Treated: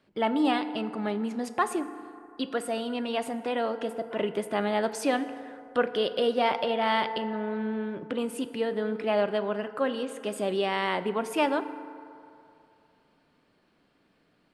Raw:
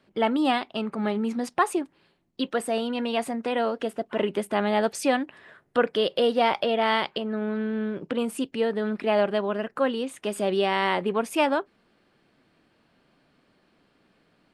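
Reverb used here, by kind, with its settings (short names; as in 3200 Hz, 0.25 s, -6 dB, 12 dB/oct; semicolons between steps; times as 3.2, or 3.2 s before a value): FDN reverb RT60 2.7 s, low-frequency decay 0.7×, high-frequency decay 0.4×, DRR 10.5 dB; gain -3.5 dB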